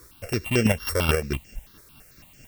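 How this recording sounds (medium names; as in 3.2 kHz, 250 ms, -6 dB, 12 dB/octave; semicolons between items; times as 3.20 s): a buzz of ramps at a fixed pitch in blocks of 16 samples; chopped level 4.6 Hz, depth 60%, duty 30%; a quantiser's noise floor 10-bit, dither triangular; notches that jump at a steady rate 9 Hz 770–3800 Hz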